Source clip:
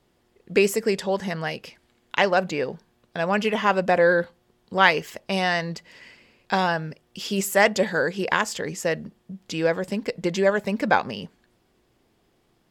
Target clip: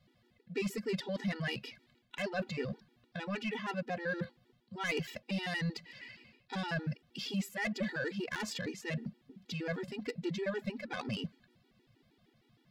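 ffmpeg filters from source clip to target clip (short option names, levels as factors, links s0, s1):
-af "areverse,acompressor=threshold=0.0398:ratio=5,areverse,aeval=exprs='0.178*(cos(1*acos(clip(val(0)/0.178,-1,1)))-cos(1*PI/2))+0.0316*(cos(3*acos(clip(val(0)/0.178,-1,1)))-cos(3*PI/2))':c=same,equalizer=f=125:t=o:w=1:g=10,equalizer=f=250:t=o:w=1:g=7,equalizer=f=2000:t=o:w=1:g=6,equalizer=f=4000:t=o:w=1:g=8,equalizer=f=8000:t=o:w=1:g=-5,asoftclip=type=tanh:threshold=0.0596,afftfilt=real='re*gt(sin(2*PI*6.4*pts/sr)*(1-2*mod(floor(b*sr/1024/250),2)),0)':imag='im*gt(sin(2*PI*6.4*pts/sr)*(1-2*mod(floor(b*sr/1024/250),2)),0)':win_size=1024:overlap=0.75"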